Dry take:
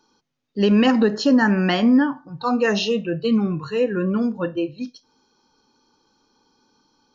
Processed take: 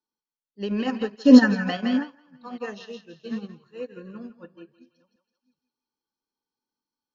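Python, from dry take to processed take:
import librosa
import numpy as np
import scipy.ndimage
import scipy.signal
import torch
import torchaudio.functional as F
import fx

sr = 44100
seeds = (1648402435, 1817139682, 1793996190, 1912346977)

y = fx.reverse_delay(x, sr, ms=430, wet_db=-12.5)
y = fx.comb(y, sr, ms=4.0, depth=0.97, at=(1.17, 1.77))
y = fx.echo_thinned(y, sr, ms=165, feedback_pct=48, hz=650.0, wet_db=-5.5)
y = fx.upward_expand(y, sr, threshold_db=-27.0, expansion=2.5)
y = y * librosa.db_to_amplitude(1.0)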